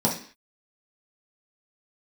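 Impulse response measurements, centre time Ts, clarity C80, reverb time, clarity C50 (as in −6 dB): 24 ms, 13.0 dB, 0.45 s, 7.5 dB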